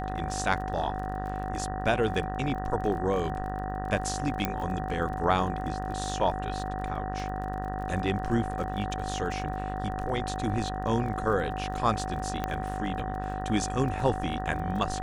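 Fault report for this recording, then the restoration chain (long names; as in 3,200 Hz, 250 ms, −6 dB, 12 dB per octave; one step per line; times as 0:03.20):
mains buzz 50 Hz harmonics 38 −35 dBFS
surface crackle 26 per second −37 dBFS
whistle 750 Hz −35 dBFS
0:04.45: click −12 dBFS
0:12.44: click −16 dBFS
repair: click removal
hum removal 50 Hz, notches 38
notch filter 750 Hz, Q 30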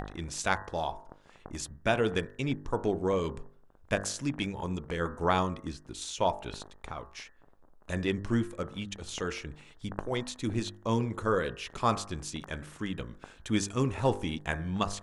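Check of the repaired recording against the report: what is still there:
0:04.45: click
0:12.44: click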